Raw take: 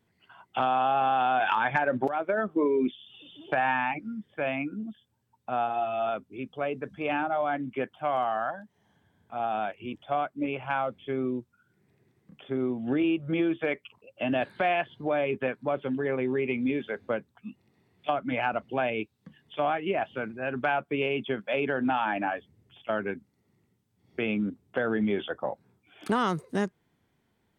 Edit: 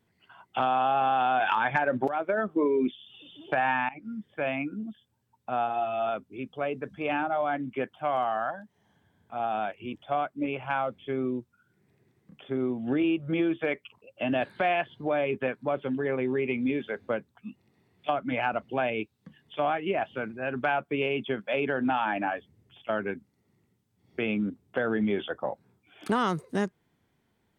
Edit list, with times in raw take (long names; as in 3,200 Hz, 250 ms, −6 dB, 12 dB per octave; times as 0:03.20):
0:03.89–0:04.14: fade in, from −20.5 dB